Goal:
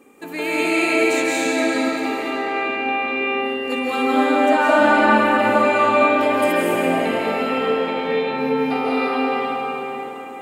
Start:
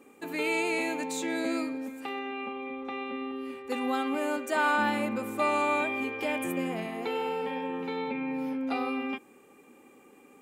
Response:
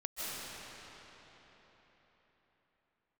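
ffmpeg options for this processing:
-filter_complex "[0:a]asettb=1/sr,asplit=3[a][b][c];[a]atrim=end=4.024[d];[b]atrim=start=4.02:end=6.13,asetpts=PTS-STARTPTS,afade=t=in:d=0.004:c=qsin,afade=t=out:st=2.106:d=0.004:c=qsin,lowpass=f=3.9k:p=1[e];[c]atrim=start=6.126[f];[d][e]acrossfade=d=0.004:c1=hsin:c2=qsin[g];[g][f]acrossfade=d=0.004:c1=qsin:c2=hsin[h];[1:a]atrim=start_sample=2205[i];[h][i]afir=irnorm=-1:irlink=0,volume=9dB"

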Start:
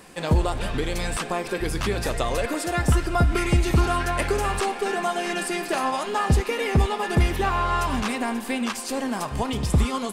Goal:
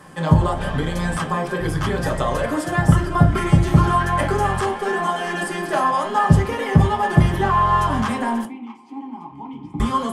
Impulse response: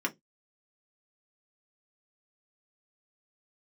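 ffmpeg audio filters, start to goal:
-filter_complex "[0:a]asettb=1/sr,asplit=3[a][b][c];[a]atrim=end=8.454[d];[b]atrim=start=8.45:end=9.8,asetpts=PTS-STARTPTS,afade=t=in:d=0.004:c=qsin,afade=t=out:st=1.346:d=0.004:c=qsin,asplit=3[e][f][g];[e]bandpass=f=300:t=q:w=8,volume=0dB[h];[f]bandpass=f=870:t=q:w=8,volume=-6dB[i];[g]bandpass=f=2.24k:t=q:w=8,volume=-9dB[j];[h][i][j]amix=inputs=3:normalize=0[k];[c]atrim=start=9.796[l];[d][k]acrossfade=d=0.004:c1=hsin:c2=qsin[m];[m][l]acrossfade=d=0.004:c1=qsin:c2=hsin[n];[1:a]atrim=start_sample=2205,asetrate=24696,aresample=44100[o];[n][o]afir=irnorm=-1:irlink=0,volume=-6dB"

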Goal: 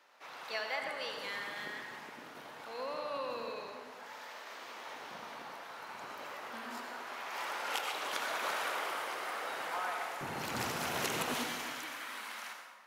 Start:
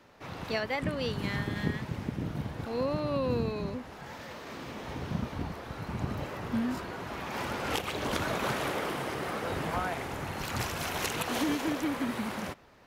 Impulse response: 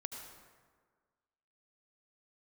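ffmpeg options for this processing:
-filter_complex "[0:a]asetnsamples=n=441:p=0,asendcmd='10.21 highpass f 160;11.34 highpass f 1300',highpass=740[a];[1:a]atrim=start_sample=2205[b];[a][b]afir=irnorm=-1:irlink=0"

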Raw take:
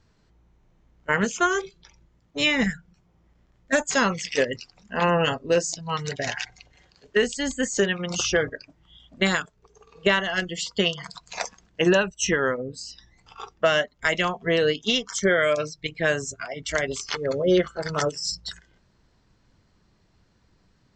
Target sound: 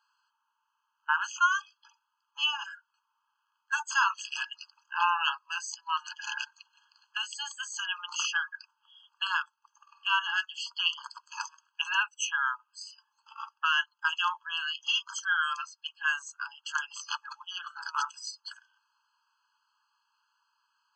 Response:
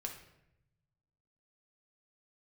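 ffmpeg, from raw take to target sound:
-af "highshelf=f=6.1k:g=-10.5,afftfilt=real='re*eq(mod(floor(b*sr/1024/840),2),1)':imag='im*eq(mod(floor(b*sr/1024/840),2),1)':win_size=1024:overlap=0.75"

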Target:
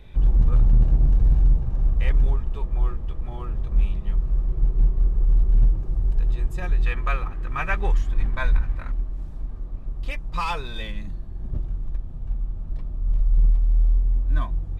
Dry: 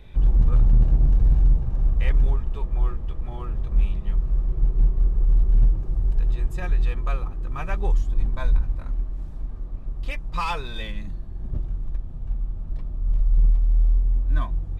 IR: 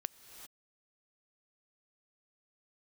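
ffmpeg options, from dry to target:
-filter_complex "[0:a]asettb=1/sr,asplit=3[a][b][c];[a]atrim=end=6.864[d];[b]atrim=start=6.86:end=8.92,asetpts=PTS-STARTPTS,afade=t=in:d=0.004:c=qsin,afade=t=out:st=2.056:d=0.004:c=qsin,equalizer=f=1.9k:w=0.91:g=11.5[e];[c]atrim=start=8.916[f];[d][e]acrossfade=d=0.004:c1=hsin:c2=qsin[g];[g][f]acrossfade=d=0.004:c1=qsin:c2=hsin"

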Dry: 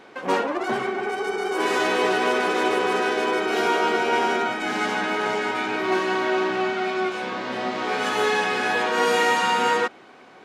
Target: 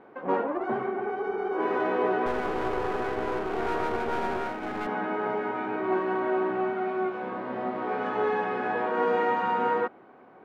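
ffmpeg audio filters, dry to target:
-filter_complex "[0:a]lowpass=1.2k,asettb=1/sr,asplit=3[a][b][c];[a]atrim=end=2.264[d];[b]atrim=start=2.26:end=4.87,asetpts=PTS-STARTPTS,afade=t=in:d=0.004:c=qsin,afade=t=out:st=2.606:d=0.004:c=qsin,aeval=exprs='clip(val(0),-1,0.0237)':c=same[e];[c]atrim=start=4.866[f];[d][e]acrossfade=d=0.004:c1=hsin:c2=qsin[g];[g][f]acrossfade=d=0.004:c1=qsin:c2=hsin,volume=-3dB"

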